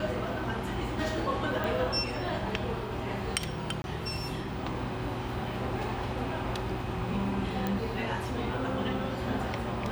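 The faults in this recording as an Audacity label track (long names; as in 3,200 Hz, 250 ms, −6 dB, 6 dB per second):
1.640000	1.640000	click
3.820000	3.840000	drop-out 21 ms
7.670000	7.670000	click −17 dBFS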